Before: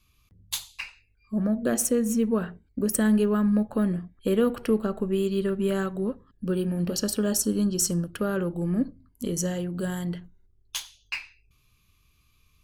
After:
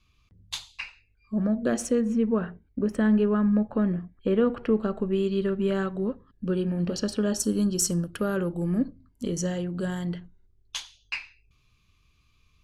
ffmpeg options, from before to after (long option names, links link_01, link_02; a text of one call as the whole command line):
ffmpeg -i in.wav -af "asetnsamples=nb_out_samples=441:pad=0,asendcmd='2.01 lowpass f 2600;4.79 lowpass f 4700;7.4 lowpass f 12000;8.78 lowpass f 6200',lowpass=5400" out.wav